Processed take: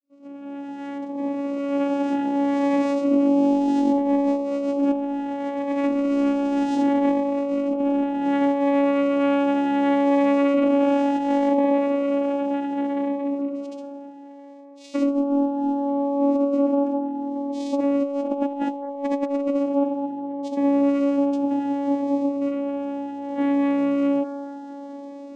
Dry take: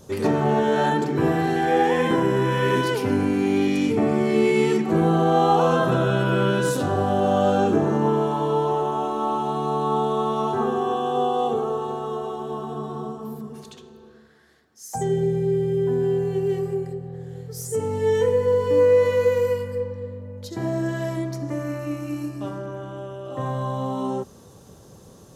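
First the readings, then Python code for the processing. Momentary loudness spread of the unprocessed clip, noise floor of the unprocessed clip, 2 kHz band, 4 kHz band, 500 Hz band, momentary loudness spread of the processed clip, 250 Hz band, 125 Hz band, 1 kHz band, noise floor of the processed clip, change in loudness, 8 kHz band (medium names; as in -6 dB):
13 LU, -48 dBFS, -6.5 dB, no reading, -3.0 dB, 11 LU, +5.0 dB, under -20 dB, -3.5 dB, -38 dBFS, 0.0 dB, under -10 dB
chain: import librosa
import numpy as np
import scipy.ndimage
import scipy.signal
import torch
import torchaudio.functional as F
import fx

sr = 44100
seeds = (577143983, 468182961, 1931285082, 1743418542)

p1 = fx.fade_in_head(x, sr, length_s=4.73)
p2 = np.clip(10.0 ** (18.5 / 20.0) * p1, -1.0, 1.0) / 10.0 ** (18.5 / 20.0)
p3 = p1 + F.gain(torch.from_numpy(p2), -7.5).numpy()
p4 = fx.vocoder(p3, sr, bands=4, carrier='saw', carrier_hz=281.0)
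p5 = fx.over_compress(p4, sr, threshold_db=-21.0, ratio=-0.5)
p6 = fx.peak_eq(p5, sr, hz=270.0, db=3.0, octaves=0.24)
p7 = p6 + fx.echo_wet_bandpass(p6, sr, ms=210, feedback_pct=76, hz=750.0, wet_db=-15.0, dry=0)
y = fx.notch_cascade(p7, sr, direction='rising', hz=0.67)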